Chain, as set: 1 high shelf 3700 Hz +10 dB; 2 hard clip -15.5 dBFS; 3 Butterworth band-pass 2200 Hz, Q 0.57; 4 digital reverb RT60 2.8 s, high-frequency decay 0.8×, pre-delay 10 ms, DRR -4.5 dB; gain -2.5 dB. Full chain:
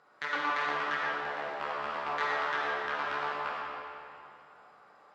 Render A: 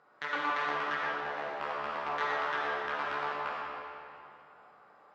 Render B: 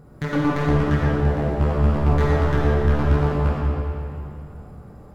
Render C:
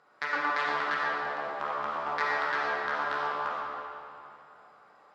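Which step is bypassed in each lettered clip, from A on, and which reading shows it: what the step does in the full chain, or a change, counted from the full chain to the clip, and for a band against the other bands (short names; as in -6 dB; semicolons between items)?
1, 4 kHz band -2.0 dB; 3, 125 Hz band +36.5 dB; 2, 4 kHz band -2.0 dB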